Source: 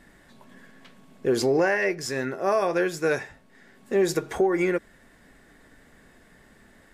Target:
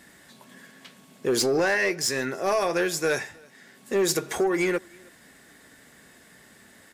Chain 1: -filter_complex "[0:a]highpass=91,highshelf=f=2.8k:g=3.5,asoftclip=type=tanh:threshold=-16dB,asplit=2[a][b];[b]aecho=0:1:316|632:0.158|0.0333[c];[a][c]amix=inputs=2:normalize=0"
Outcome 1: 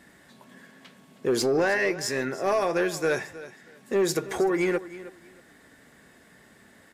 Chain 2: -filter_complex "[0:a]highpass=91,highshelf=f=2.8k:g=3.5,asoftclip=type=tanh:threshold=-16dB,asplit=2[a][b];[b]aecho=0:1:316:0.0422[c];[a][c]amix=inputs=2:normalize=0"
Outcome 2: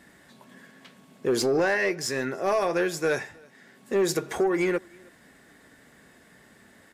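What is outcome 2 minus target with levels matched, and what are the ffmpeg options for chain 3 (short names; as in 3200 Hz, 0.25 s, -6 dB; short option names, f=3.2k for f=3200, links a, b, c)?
4000 Hz band -3.5 dB
-filter_complex "[0:a]highpass=91,highshelf=f=2.8k:g=11,asoftclip=type=tanh:threshold=-16dB,asplit=2[a][b];[b]aecho=0:1:316:0.0422[c];[a][c]amix=inputs=2:normalize=0"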